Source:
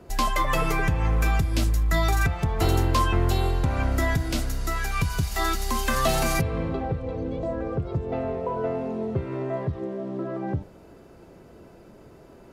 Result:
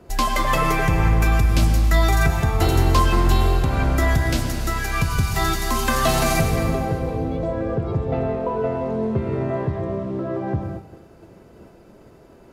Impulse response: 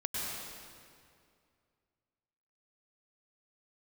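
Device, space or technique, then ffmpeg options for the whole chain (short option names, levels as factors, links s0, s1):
keyed gated reverb: -filter_complex "[0:a]asplit=3[s0][s1][s2];[1:a]atrim=start_sample=2205[s3];[s1][s3]afir=irnorm=-1:irlink=0[s4];[s2]apad=whole_len=552494[s5];[s4][s5]sidechaingate=range=0.0224:threshold=0.00501:ratio=16:detection=peak,volume=0.562[s6];[s0][s6]amix=inputs=2:normalize=0"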